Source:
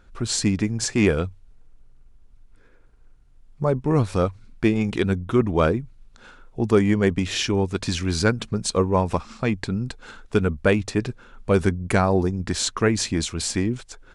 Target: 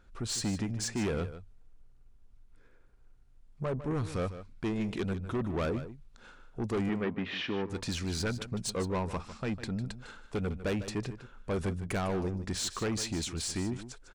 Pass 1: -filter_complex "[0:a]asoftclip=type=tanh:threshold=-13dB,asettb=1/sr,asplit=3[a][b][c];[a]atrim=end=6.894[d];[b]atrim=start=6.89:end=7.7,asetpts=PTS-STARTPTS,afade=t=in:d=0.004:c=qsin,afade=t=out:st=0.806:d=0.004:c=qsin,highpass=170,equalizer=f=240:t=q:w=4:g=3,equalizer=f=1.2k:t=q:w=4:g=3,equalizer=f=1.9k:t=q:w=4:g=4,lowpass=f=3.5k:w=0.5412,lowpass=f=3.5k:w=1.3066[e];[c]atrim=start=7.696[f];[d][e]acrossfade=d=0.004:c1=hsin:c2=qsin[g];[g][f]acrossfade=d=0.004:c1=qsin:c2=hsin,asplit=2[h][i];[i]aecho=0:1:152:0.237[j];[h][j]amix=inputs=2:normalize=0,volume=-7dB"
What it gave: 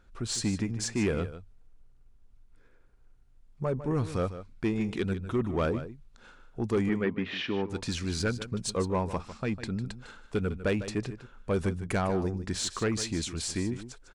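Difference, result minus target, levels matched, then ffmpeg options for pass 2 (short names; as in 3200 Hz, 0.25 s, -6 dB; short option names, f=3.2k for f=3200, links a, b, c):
soft clip: distortion -7 dB
-filter_complex "[0:a]asoftclip=type=tanh:threshold=-20.5dB,asettb=1/sr,asplit=3[a][b][c];[a]atrim=end=6.894[d];[b]atrim=start=6.89:end=7.7,asetpts=PTS-STARTPTS,afade=t=in:d=0.004:c=qsin,afade=t=out:st=0.806:d=0.004:c=qsin,highpass=170,equalizer=f=240:t=q:w=4:g=3,equalizer=f=1.2k:t=q:w=4:g=3,equalizer=f=1.9k:t=q:w=4:g=4,lowpass=f=3.5k:w=0.5412,lowpass=f=3.5k:w=1.3066[e];[c]atrim=start=7.696[f];[d][e]acrossfade=d=0.004:c1=hsin:c2=qsin[g];[g][f]acrossfade=d=0.004:c1=qsin:c2=hsin,asplit=2[h][i];[i]aecho=0:1:152:0.237[j];[h][j]amix=inputs=2:normalize=0,volume=-7dB"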